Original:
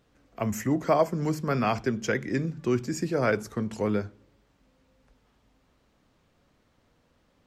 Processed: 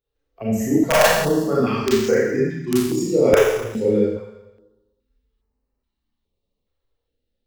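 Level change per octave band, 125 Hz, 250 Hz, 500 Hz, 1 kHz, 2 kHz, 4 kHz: +3.0, +8.0, +11.0, +5.5, +9.0, +14.0 dB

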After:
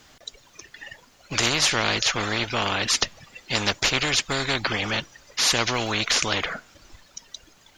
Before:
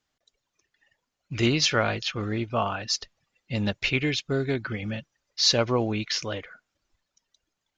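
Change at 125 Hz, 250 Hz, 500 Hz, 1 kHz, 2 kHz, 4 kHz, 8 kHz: -3.0, -3.0, -1.5, +4.5, +6.5, +5.0, +8.0 dB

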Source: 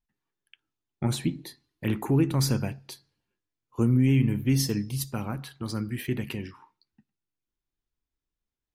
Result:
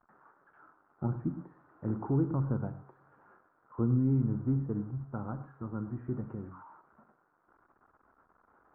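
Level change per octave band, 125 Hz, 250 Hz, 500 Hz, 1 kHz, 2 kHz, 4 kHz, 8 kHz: -5.5 dB, -6.0 dB, -6.0 dB, -5.0 dB, under -15 dB, under -40 dB, under -40 dB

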